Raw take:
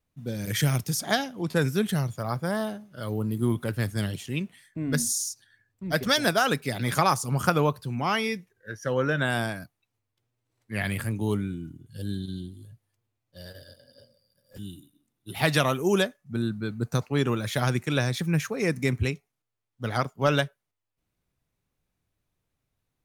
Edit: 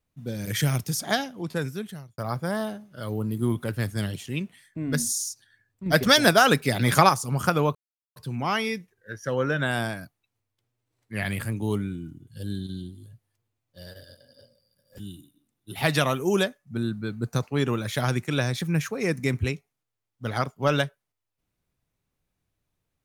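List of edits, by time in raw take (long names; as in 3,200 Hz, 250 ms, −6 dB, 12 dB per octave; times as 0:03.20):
0:01.19–0:02.18: fade out
0:05.86–0:07.09: clip gain +5.5 dB
0:07.75: splice in silence 0.41 s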